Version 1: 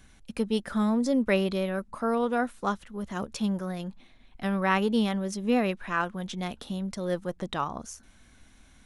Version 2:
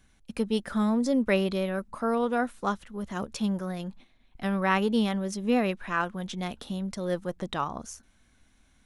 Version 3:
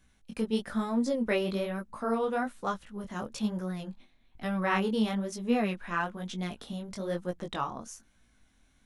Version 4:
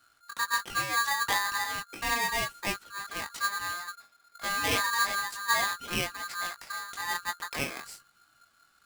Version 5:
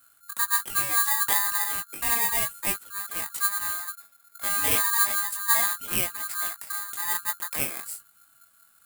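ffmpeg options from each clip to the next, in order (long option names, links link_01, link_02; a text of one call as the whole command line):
ffmpeg -i in.wav -af "agate=range=-7dB:threshold=-48dB:ratio=16:detection=peak" out.wav
ffmpeg -i in.wav -af "flanger=delay=16.5:depth=6.7:speed=1.1" out.wav
ffmpeg -i in.wav -af "aeval=exprs='val(0)*sgn(sin(2*PI*1400*n/s))':channel_layout=same" out.wav
ffmpeg -i in.wav -af "aexciter=amount=4.6:drive=6.6:freq=7700,volume=-1dB" out.wav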